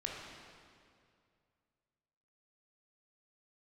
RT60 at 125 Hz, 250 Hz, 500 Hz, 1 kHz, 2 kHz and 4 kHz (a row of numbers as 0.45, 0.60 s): 2.8, 2.4, 2.4, 2.2, 2.0, 1.8 s